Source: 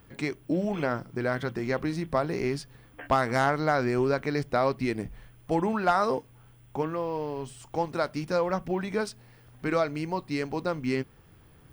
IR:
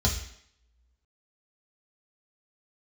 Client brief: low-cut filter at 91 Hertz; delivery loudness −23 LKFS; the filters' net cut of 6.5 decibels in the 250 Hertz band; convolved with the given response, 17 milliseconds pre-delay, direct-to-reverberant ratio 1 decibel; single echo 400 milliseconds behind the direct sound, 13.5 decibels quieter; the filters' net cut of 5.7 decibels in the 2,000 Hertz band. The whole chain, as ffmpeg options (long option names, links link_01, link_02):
-filter_complex "[0:a]highpass=91,equalizer=frequency=250:width_type=o:gain=-9,equalizer=frequency=2000:width_type=o:gain=-8,aecho=1:1:400:0.211,asplit=2[link_01][link_02];[1:a]atrim=start_sample=2205,adelay=17[link_03];[link_02][link_03]afir=irnorm=-1:irlink=0,volume=-10.5dB[link_04];[link_01][link_04]amix=inputs=2:normalize=0,volume=4dB"